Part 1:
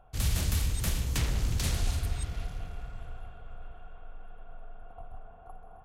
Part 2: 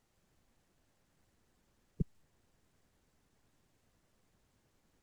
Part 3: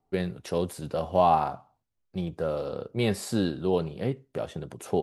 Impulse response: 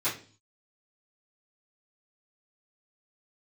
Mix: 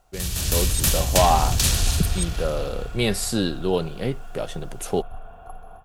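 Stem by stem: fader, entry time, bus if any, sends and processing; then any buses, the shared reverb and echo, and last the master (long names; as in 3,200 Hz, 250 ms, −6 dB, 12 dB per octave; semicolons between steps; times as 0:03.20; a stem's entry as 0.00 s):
−4.0 dB, 0.00 s, no send, notch filter 2,100 Hz, Q 9.9
+1.5 dB, 0.00 s, no send, no processing
−9.0 dB, 0.00 s, no send, no processing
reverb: not used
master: high-shelf EQ 2,300 Hz +9 dB; automatic gain control gain up to 11.5 dB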